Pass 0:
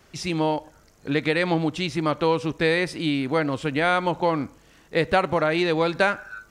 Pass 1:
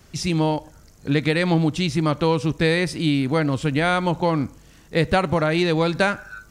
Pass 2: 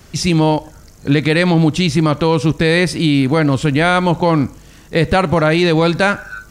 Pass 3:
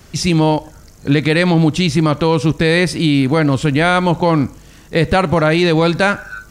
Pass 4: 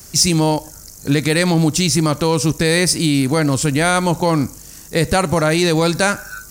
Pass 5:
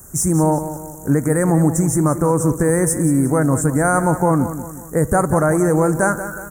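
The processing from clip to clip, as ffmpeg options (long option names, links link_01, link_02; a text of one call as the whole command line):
ffmpeg -i in.wav -af "bass=frequency=250:gain=9,treble=frequency=4000:gain=6" out.wav
ffmpeg -i in.wav -af "alimiter=limit=-10.5dB:level=0:latency=1:release=20,volume=8dB" out.wav
ffmpeg -i in.wav -af anull out.wav
ffmpeg -i in.wav -af "aexciter=amount=3.9:drive=8:freq=4800,volume=-2.5dB" out.wav
ffmpeg -i in.wav -filter_complex "[0:a]asuperstop=centerf=3500:order=8:qfactor=0.63,asplit=2[link_01][link_02];[link_02]aecho=0:1:182|364|546|728|910:0.266|0.122|0.0563|0.0259|0.0119[link_03];[link_01][link_03]amix=inputs=2:normalize=0" out.wav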